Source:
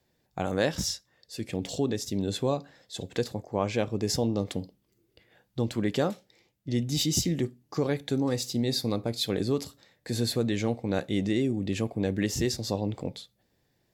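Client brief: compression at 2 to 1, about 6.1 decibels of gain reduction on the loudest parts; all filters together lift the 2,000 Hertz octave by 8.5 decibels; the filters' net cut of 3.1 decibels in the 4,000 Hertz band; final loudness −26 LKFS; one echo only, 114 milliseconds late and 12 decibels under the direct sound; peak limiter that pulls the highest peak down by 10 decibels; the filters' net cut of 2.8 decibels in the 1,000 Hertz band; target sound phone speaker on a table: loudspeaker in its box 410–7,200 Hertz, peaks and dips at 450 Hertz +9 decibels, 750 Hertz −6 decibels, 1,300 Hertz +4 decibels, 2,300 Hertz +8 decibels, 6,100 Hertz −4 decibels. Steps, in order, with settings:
parametric band 1,000 Hz −4 dB
parametric band 2,000 Hz +8 dB
parametric band 4,000 Hz −5.5 dB
downward compressor 2 to 1, threshold −33 dBFS
brickwall limiter −27 dBFS
loudspeaker in its box 410–7,200 Hz, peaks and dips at 450 Hz +9 dB, 750 Hz −6 dB, 1,300 Hz +4 dB, 2,300 Hz +8 dB, 6,100 Hz −4 dB
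single-tap delay 114 ms −12 dB
level +13.5 dB

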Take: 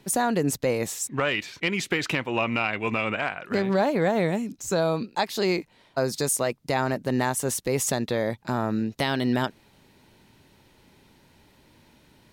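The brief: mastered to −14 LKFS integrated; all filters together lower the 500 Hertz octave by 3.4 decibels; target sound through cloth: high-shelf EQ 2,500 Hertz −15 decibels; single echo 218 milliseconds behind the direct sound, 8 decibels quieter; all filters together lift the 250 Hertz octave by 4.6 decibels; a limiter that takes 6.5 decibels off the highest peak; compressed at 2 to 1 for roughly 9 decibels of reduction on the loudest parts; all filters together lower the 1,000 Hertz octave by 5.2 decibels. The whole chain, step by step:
parametric band 250 Hz +7 dB
parametric band 500 Hz −5 dB
parametric band 1,000 Hz −3 dB
downward compressor 2 to 1, threshold −33 dBFS
brickwall limiter −24 dBFS
high-shelf EQ 2,500 Hz −15 dB
single-tap delay 218 ms −8 dB
level +21 dB

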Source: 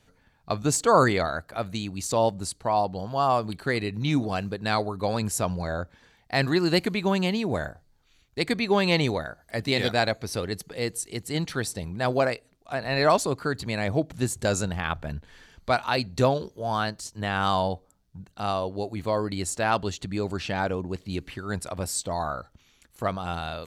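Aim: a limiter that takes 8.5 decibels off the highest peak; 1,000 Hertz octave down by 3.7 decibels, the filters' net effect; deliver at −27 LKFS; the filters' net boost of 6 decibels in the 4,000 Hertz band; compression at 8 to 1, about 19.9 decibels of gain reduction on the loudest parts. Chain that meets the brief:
parametric band 1,000 Hz −5.5 dB
parametric band 4,000 Hz +7 dB
downward compressor 8 to 1, threshold −38 dBFS
level +16 dB
brickwall limiter −14.5 dBFS

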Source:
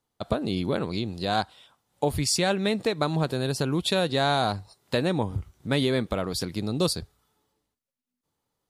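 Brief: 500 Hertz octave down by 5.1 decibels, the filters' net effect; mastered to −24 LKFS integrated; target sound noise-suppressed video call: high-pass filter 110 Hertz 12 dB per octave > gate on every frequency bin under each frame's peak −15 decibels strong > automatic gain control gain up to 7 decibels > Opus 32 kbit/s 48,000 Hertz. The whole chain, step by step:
high-pass filter 110 Hz 12 dB per octave
parametric band 500 Hz −6.5 dB
gate on every frequency bin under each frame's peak −15 dB strong
automatic gain control gain up to 7 dB
level +6 dB
Opus 32 kbit/s 48,000 Hz

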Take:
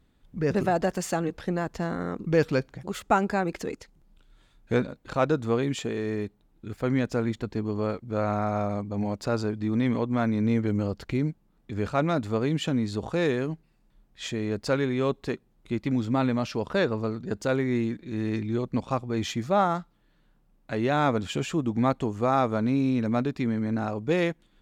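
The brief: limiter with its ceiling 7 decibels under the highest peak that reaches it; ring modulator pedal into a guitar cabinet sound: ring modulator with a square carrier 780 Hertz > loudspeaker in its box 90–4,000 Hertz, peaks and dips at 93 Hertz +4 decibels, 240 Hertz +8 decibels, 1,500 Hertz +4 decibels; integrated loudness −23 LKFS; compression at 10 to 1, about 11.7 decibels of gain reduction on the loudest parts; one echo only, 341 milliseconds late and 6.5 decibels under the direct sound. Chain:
downward compressor 10 to 1, threshold −28 dBFS
brickwall limiter −24 dBFS
single-tap delay 341 ms −6.5 dB
ring modulator with a square carrier 780 Hz
loudspeaker in its box 90–4,000 Hz, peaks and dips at 93 Hz +4 dB, 240 Hz +8 dB, 1,500 Hz +4 dB
level +10 dB

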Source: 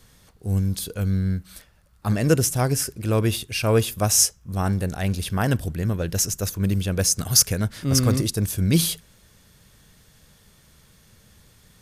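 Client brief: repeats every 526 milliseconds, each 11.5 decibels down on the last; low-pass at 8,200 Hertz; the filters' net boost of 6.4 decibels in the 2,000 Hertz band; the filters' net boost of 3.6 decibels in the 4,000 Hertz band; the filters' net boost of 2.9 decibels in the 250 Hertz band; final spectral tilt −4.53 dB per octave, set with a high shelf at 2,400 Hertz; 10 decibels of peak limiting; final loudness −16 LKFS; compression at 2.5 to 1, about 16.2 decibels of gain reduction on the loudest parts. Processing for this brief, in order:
low-pass filter 8,200 Hz
parametric band 250 Hz +4 dB
parametric band 2,000 Hz +8.5 dB
high-shelf EQ 2,400 Hz −3.5 dB
parametric band 4,000 Hz +7.5 dB
downward compressor 2.5 to 1, threshold −37 dBFS
brickwall limiter −27.5 dBFS
repeating echo 526 ms, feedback 27%, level −11.5 dB
level +21 dB

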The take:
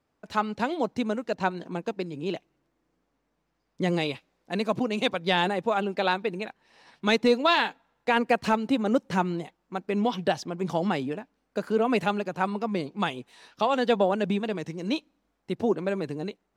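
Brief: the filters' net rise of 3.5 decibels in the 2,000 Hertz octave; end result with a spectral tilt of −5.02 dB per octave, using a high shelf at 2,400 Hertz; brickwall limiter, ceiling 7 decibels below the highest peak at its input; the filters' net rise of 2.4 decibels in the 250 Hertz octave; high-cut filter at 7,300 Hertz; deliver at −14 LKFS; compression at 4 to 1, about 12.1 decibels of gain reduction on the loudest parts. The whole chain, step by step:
low-pass filter 7,300 Hz
parametric band 250 Hz +3 dB
parametric band 2,000 Hz +8.5 dB
high-shelf EQ 2,400 Hz −8 dB
downward compressor 4 to 1, threshold −31 dBFS
level +22 dB
brickwall limiter −1.5 dBFS

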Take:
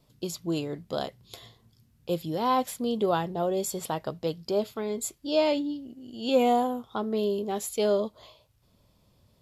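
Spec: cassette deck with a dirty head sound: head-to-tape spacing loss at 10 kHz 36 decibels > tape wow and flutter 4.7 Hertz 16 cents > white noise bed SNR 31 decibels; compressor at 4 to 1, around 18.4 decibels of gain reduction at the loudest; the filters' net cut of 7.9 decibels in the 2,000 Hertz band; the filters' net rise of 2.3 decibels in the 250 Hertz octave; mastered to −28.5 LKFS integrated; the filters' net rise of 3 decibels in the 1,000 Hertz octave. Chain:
parametric band 250 Hz +3.5 dB
parametric band 1,000 Hz +9 dB
parametric band 2,000 Hz −5.5 dB
downward compressor 4 to 1, threshold −38 dBFS
head-to-tape spacing loss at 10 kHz 36 dB
tape wow and flutter 4.7 Hz 16 cents
white noise bed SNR 31 dB
level +13 dB

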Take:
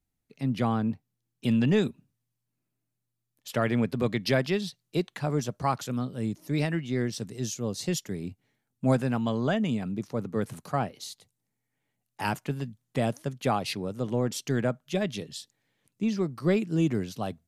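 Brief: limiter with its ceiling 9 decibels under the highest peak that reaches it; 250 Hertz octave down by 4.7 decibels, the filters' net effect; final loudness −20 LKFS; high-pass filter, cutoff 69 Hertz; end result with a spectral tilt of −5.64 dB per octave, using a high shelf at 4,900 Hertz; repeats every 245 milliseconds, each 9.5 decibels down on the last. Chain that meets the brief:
high-pass filter 69 Hz
parametric band 250 Hz −6 dB
high-shelf EQ 4,900 Hz −6 dB
brickwall limiter −23 dBFS
repeating echo 245 ms, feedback 33%, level −9.5 dB
level +14.5 dB

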